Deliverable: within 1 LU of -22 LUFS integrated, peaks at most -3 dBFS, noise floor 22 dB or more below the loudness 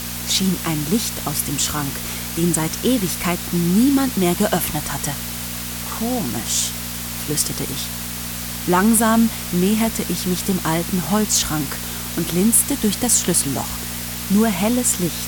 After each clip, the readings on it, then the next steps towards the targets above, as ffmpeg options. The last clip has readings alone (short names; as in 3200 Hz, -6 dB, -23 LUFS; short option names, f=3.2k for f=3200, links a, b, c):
hum 60 Hz; harmonics up to 240 Hz; hum level -30 dBFS; noise floor -28 dBFS; noise floor target -42 dBFS; loudness -19.5 LUFS; peak -4.0 dBFS; loudness target -22.0 LUFS
-> -af "bandreject=f=60:t=h:w=4,bandreject=f=120:t=h:w=4,bandreject=f=180:t=h:w=4,bandreject=f=240:t=h:w=4"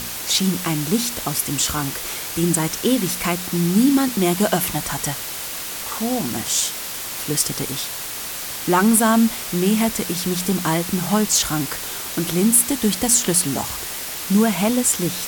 hum none; noise floor -30 dBFS; noise floor target -42 dBFS
-> -af "afftdn=nr=12:nf=-30"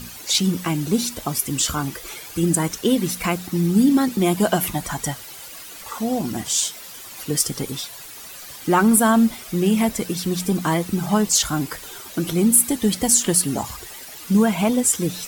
noise floor -38 dBFS; noise floor target -42 dBFS
-> -af "afftdn=nr=6:nf=-38"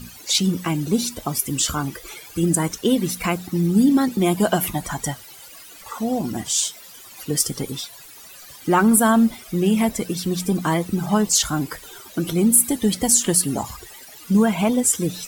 noise floor -43 dBFS; loudness -20.0 LUFS; peak -4.0 dBFS; loudness target -22.0 LUFS
-> -af "volume=-2dB"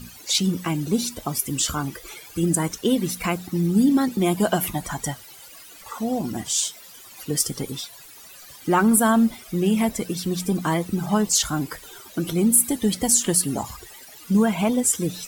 loudness -22.0 LUFS; peak -6.0 dBFS; noise floor -45 dBFS